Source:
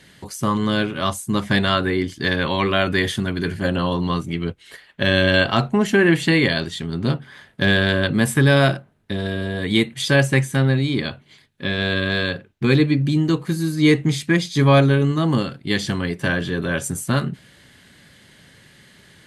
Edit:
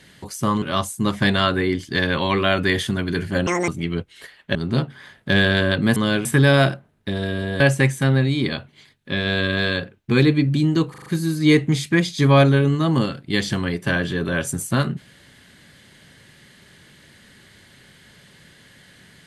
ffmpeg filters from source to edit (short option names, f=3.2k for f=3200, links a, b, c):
-filter_complex "[0:a]asplit=12[a][b][c][d][e][f][g][h][i][j][k][l];[a]atrim=end=0.622[m];[b]atrim=start=0.908:end=3.764[n];[c]atrim=start=3.76:end=4.18,asetpts=PTS-STARTPTS,asetrate=87759,aresample=44100[o];[d]atrim=start=4.176:end=5.052[p];[e]atrim=start=6.868:end=8.282[q];[f]atrim=start=0.618:end=0.912[r];[g]atrim=start=8.278:end=9.632[s];[h]atrim=start=10.128:end=13.472[t];[i]atrim=start=13.428:end=13.472[u];[j]atrim=start=13.428:end=13.472[v];[k]atrim=start=13.428:end=13.472[w];[l]atrim=start=13.428[x];[m][n]acrossfade=d=0.004:c1=hsin:c2=hsin[y];[y][o]acrossfade=d=0.004:c1=hsin:c2=hsin[z];[z][p]acrossfade=d=0.004:c1=hsin:c2=hsin[aa];[aa][q]acrossfade=d=0.004:c1=hsin:c2=hsin[ab];[ab][r]acrossfade=d=0.004:c1=hsin:c2=hsin[ac];[ac][s]acrossfade=d=0.004:c1=hsin:c2=hsin[ad];[ad][t]acrossfade=d=0.004:c1=hsin:c2=hsin[ae];[ae][u]acrossfade=d=0.004:c1=hsin:c2=hsin[af];[af][v]acrossfade=d=0.004:c1=hsin:c2=hsin[ag];[ag][w]acrossfade=d=0.004:c1=hsin:c2=hsin[ah];[ah][x]acrossfade=d=0.004:c1=hsin:c2=hsin"